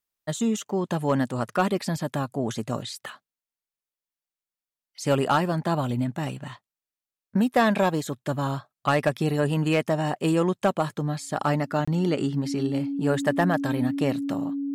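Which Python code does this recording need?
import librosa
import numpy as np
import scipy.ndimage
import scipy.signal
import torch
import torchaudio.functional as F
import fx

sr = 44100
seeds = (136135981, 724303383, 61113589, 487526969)

y = fx.fix_declip(x, sr, threshold_db=-12.5)
y = fx.notch(y, sr, hz=280.0, q=30.0)
y = fx.fix_interpolate(y, sr, at_s=(11.85,), length_ms=25.0)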